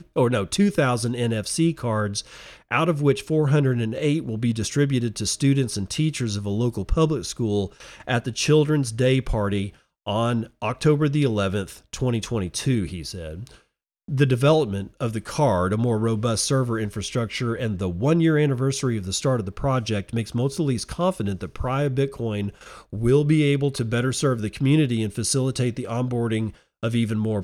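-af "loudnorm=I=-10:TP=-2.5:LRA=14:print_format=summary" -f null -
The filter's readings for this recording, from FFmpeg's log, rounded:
Input Integrated:    -23.3 LUFS
Input True Peak:      -5.7 dBTP
Input LRA:             2.1 LU
Input Threshold:     -33.5 LUFS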